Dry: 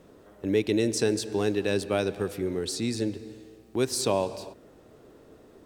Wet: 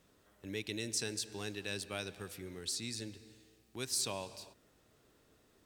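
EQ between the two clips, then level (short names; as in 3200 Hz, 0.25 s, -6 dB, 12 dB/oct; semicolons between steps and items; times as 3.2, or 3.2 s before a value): passive tone stack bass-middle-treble 5-5-5; +2.0 dB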